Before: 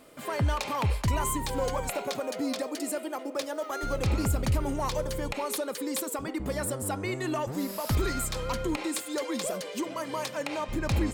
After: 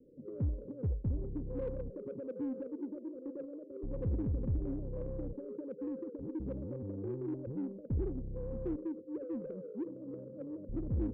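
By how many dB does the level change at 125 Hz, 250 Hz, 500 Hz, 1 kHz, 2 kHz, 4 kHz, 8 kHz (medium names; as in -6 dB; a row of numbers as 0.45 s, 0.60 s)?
-6.5 dB, -5.5 dB, -9.5 dB, -28.5 dB, under -30 dB, under -40 dB, under -40 dB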